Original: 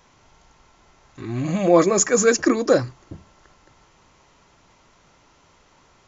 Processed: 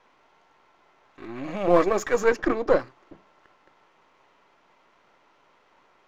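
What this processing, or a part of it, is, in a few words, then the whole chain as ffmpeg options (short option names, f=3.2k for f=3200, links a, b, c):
crystal radio: -filter_complex "[0:a]highpass=340,lowpass=2.8k,aeval=exprs='if(lt(val(0),0),0.447*val(0),val(0))':c=same,asettb=1/sr,asplit=3[a][b][c];[a]atrim=end=2.284[d];[b]atrim=start=2.28:end=2.8,asetpts=PTS-STARTPTS,afade=t=in:d=0.004:c=qsin,afade=t=out:st=0.516:d=0.004:c=qsin,aemphasis=mode=reproduction:type=cd[e];[c]atrim=start=2.796[f];[d][e]acrossfade=d=0.004:c1=hsin:c2=qsin[g];[g][f]acrossfade=d=0.004:c1=qsin:c2=hsin"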